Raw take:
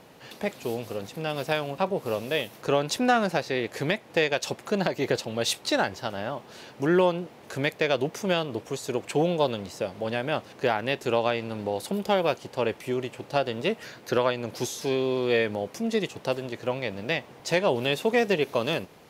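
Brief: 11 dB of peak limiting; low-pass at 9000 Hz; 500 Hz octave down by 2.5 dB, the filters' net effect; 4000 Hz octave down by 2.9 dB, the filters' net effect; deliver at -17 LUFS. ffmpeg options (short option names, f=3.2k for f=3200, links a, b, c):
-af "lowpass=9k,equalizer=f=500:t=o:g=-3,equalizer=f=4k:t=o:g=-3.5,volume=16dB,alimiter=limit=-4dB:level=0:latency=1"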